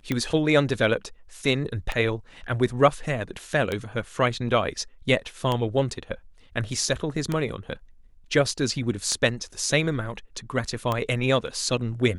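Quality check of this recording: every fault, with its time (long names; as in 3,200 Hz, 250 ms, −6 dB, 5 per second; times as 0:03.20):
scratch tick 33 1/3 rpm −12 dBFS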